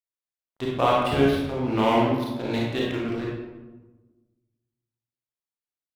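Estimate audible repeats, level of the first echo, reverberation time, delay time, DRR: no echo, no echo, 1.2 s, no echo, -4.5 dB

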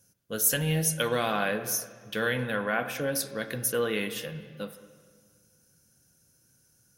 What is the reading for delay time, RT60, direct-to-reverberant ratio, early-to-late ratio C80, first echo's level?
no echo, 1.7 s, 10.5 dB, 12.5 dB, no echo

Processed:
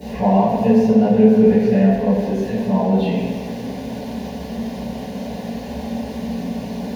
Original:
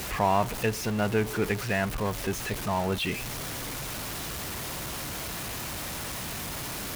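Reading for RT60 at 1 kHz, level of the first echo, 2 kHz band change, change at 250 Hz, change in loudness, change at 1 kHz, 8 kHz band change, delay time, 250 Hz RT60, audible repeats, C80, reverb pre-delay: 2.1 s, no echo, -3.5 dB, +18.0 dB, +11.5 dB, +6.0 dB, under -10 dB, no echo, 2.0 s, no echo, 1.0 dB, 5 ms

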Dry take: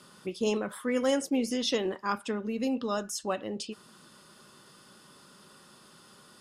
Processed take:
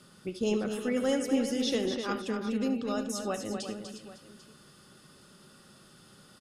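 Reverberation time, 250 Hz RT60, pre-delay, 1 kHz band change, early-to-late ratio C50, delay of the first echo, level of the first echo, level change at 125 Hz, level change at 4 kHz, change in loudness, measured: no reverb, no reverb, no reverb, -3.5 dB, no reverb, 71 ms, -14.0 dB, +2.0 dB, -1.5 dB, -0.5 dB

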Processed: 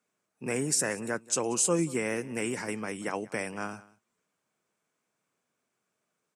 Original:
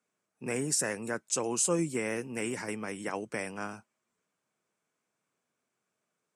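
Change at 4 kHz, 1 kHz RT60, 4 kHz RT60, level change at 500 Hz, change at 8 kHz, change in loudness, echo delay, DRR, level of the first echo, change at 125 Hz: +2.0 dB, no reverb, no reverb, +2.0 dB, +2.0 dB, +2.0 dB, 185 ms, no reverb, -21.0 dB, +2.0 dB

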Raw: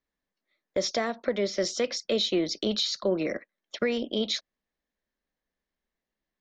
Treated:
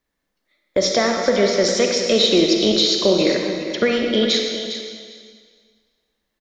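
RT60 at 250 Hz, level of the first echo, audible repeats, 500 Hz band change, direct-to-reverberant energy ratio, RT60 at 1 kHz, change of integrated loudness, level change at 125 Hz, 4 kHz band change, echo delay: 1.7 s, -10.5 dB, 2, +11.0 dB, 1.0 dB, 1.9 s, +11.0 dB, +11.0 dB, +11.5 dB, 405 ms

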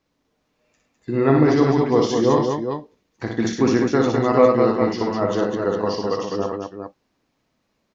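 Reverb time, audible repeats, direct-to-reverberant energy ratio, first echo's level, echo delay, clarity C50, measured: no reverb, 4, no reverb, -4.0 dB, 59 ms, no reverb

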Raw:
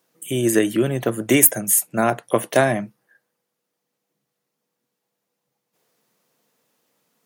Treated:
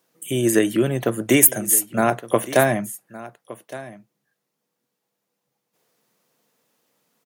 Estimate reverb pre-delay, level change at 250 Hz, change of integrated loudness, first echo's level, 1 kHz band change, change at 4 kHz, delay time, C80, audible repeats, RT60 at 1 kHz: no reverb, 0.0 dB, 0.0 dB, -17.5 dB, 0.0 dB, 0.0 dB, 1165 ms, no reverb, 1, no reverb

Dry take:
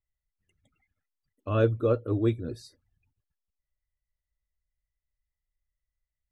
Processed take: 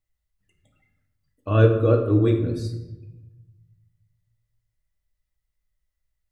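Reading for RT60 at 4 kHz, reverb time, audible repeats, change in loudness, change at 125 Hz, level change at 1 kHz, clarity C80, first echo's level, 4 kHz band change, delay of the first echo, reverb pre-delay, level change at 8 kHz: 0.65 s, 1.0 s, no echo, +6.5 dB, +9.5 dB, +5.5 dB, 10.0 dB, no echo, +6.0 dB, no echo, 6 ms, no reading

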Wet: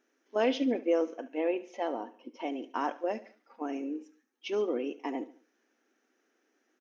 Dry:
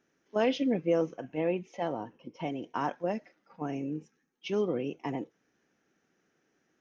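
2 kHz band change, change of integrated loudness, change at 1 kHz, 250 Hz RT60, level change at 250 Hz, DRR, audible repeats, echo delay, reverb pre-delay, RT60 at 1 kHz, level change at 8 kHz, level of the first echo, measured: 0.0 dB, -0.5 dB, 0.0 dB, no reverb, -1.0 dB, no reverb, 3, 71 ms, no reverb, no reverb, no reading, -17.5 dB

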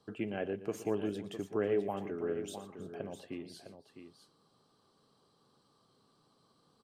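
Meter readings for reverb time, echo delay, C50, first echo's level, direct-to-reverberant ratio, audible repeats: no reverb, 118 ms, no reverb, -14.5 dB, no reverb, 3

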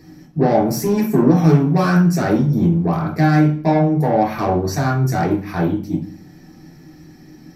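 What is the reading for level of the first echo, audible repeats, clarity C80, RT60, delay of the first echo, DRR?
no echo, no echo, 11.0 dB, 0.45 s, no echo, -4.0 dB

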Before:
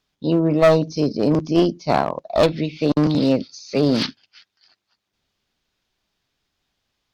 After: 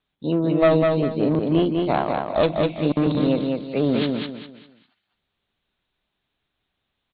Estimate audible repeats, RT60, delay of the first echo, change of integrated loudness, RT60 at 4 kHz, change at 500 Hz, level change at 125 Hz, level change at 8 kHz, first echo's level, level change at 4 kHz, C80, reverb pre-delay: 4, no reverb, 200 ms, -2.0 dB, no reverb, -1.5 dB, -2.0 dB, no reading, -3.5 dB, -4.5 dB, no reverb, no reverb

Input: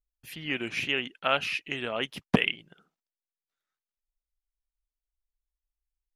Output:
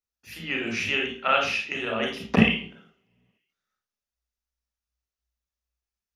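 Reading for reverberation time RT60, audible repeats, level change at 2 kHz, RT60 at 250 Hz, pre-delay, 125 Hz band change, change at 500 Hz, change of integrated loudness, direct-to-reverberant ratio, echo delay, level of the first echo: 0.50 s, no echo, +4.0 dB, 0.55 s, 28 ms, +5.0 dB, +3.5 dB, +4.5 dB, 0.0 dB, no echo, no echo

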